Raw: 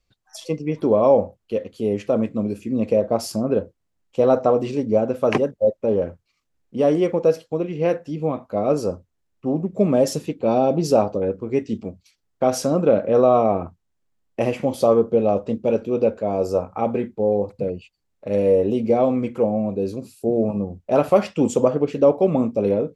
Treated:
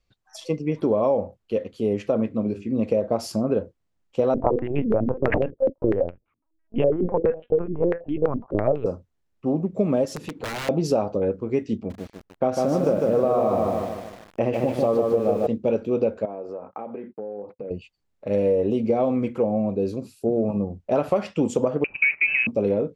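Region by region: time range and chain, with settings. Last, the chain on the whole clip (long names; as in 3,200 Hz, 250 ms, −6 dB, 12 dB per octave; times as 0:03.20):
0:02.12–0:02.80: high-frequency loss of the air 84 metres + mains-hum notches 50/100/150/200/250/300/350/400 Hz
0:04.34–0:08.86: dynamic equaliser 260 Hz, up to +4 dB, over −33 dBFS + linear-prediction vocoder at 8 kHz pitch kept + low-pass on a step sequencer 12 Hz 260–2,600 Hz
0:10.05–0:10.69: wrap-around overflow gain 14.5 dB + downward compressor, threshold −31 dBFS + leveller curve on the samples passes 1
0:11.75–0:15.47: high-shelf EQ 2,900 Hz −9 dB + feedback echo at a low word length 150 ms, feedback 55%, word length 7 bits, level −3 dB
0:16.25–0:17.71: downward compressor 16 to 1, threshold −28 dBFS + band-pass filter 240–2,200 Hz + noise gate −49 dBFS, range −27 dB
0:21.84–0:22.47: spike at every zero crossing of −22.5 dBFS + noise gate −24 dBFS, range −13 dB + voice inversion scrambler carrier 2,800 Hz
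whole clip: high-shelf EQ 6,900 Hz −8 dB; downward compressor, threshold −17 dBFS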